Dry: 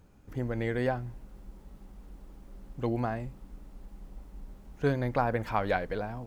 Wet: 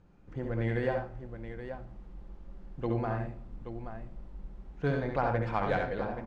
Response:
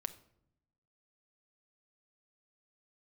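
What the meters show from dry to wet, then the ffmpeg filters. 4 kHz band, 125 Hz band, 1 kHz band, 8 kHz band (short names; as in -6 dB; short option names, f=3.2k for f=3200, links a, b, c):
-3.0 dB, 0.0 dB, -1.0 dB, n/a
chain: -filter_complex "[0:a]aresample=22050,aresample=44100[a];[1:a]atrim=start_sample=2205[b];[a][b]afir=irnorm=-1:irlink=0,adynamicsmooth=sensitivity=2.5:basefreq=4.3k,aecho=1:1:69|88|114|827:0.562|0.316|0.141|0.335,volume=-1dB"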